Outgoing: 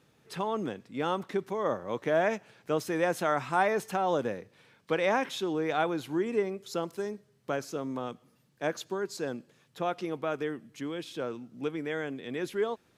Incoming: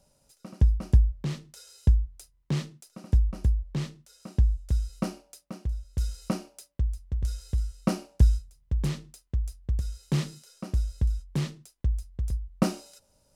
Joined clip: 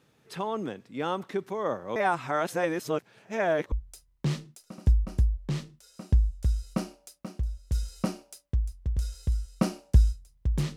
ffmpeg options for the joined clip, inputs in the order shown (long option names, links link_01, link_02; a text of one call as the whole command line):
ffmpeg -i cue0.wav -i cue1.wav -filter_complex "[0:a]apad=whole_dur=10.76,atrim=end=10.76,asplit=2[link_01][link_02];[link_01]atrim=end=1.962[link_03];[link_02]atrim=start=1.958:end=3.722,asetpts=PTS-STARTPTS,areverse[link_04];[1:a]atrim=start=1.978:end=9.02[link_05];[link_03][link_04]acrossfade=duration=0.004:curve1=hsin:curve2=hsin[link_06];[link_06][link_05]acrossfade=duration=0.004:curve1=hsin:curve2=hsin" out.wav